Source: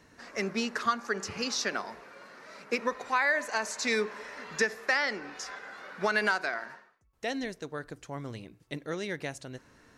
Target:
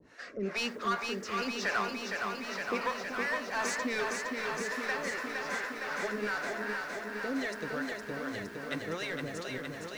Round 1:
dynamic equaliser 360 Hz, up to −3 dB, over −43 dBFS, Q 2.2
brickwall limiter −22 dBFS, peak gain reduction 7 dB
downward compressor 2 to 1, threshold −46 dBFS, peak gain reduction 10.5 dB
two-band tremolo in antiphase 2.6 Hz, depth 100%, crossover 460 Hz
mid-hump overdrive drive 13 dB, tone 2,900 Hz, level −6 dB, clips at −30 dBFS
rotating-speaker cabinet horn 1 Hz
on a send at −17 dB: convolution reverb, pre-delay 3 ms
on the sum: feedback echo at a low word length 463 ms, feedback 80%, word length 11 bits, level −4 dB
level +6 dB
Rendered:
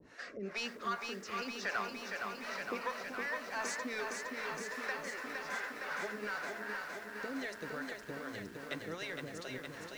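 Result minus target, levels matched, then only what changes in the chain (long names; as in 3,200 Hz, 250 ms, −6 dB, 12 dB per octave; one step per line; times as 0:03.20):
downward compressor: peak gain reduction +10.5 dB
remove: downward compressor 2 to 1, threshold −46 dBFS, peak gain reduction 10.5 dB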